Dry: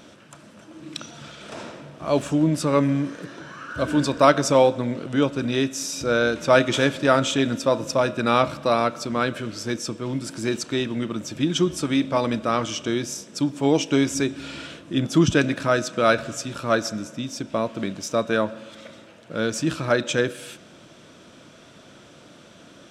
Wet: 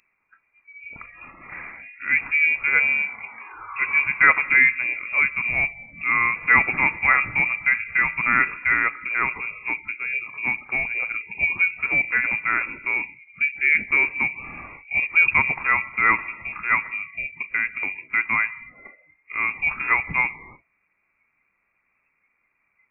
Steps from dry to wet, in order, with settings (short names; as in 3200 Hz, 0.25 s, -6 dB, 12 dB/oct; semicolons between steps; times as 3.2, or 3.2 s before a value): spectral noise reduction 22 dB; inverted band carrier 2600 Hz